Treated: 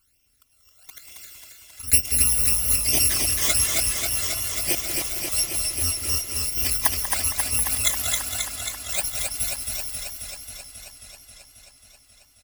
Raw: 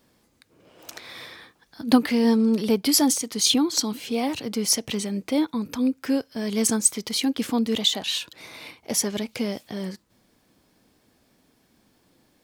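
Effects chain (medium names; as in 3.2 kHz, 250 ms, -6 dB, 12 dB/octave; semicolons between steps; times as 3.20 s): bit-reversed sample order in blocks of 256 samples; phase shifter stages 12, 1.1 Hz, lowest notch 240–1400 Hz; delay 188 ms -10 dB; modulated delay 269 ms, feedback 76%, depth 52 cents, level -3.5 dB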